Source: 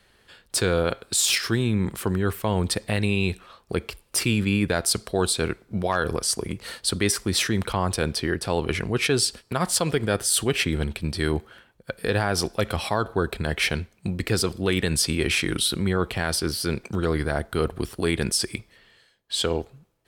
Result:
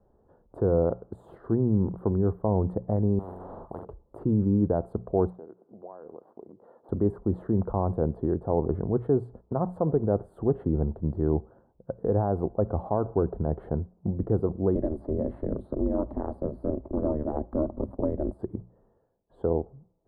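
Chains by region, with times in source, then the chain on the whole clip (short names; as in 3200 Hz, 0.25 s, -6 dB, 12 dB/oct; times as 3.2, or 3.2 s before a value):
3.19–3.85 high shelf 8200 Hz +10.5 dB + flutter echo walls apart 7.4 m, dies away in 0.28 s + spectral compressor 10:1
5.3–6.89 switching dead time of 0.074 ms + compressor 4:1, threshold -38 dBFS + HPF 320 Hz
14.75–18.39 ripple EQ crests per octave 0.93, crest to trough 8 dB + ring modulator 150 Hz + three-band squash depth 70%
whole clip: inverse Chebyshev low-pass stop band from 2200 Hz, stop band 50 dB; notches 60/120/180 Hz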